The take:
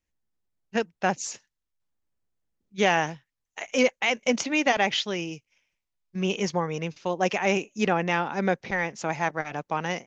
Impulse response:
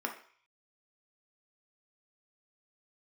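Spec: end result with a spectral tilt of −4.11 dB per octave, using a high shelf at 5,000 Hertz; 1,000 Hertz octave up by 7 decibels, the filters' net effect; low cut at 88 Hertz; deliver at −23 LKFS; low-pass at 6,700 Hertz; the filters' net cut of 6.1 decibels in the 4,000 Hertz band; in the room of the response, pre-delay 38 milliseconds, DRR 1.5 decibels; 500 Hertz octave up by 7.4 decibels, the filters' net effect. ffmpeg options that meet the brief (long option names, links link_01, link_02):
-filter_complex "[0:a]highpass=88,lowpass=6700,equalizer=frequency=500:width_type=o:gain=7,equalizer=frequency=1000:width_type=o:gain=7,equalizer=frequency=4000:width_type=o:gain=-6,highshelf=frequency=5000:gain=-9,asplit=2[link_01][link_02];[1:a]atrim=start_sample=2205,adelay=38[link_03];[link_02][link_03]afir=irnorm=-1:irlink=0,volume=-6dB[link_04];[link_01][link_04]amix=inputs=2:normalize=0,volume=-3.5dB"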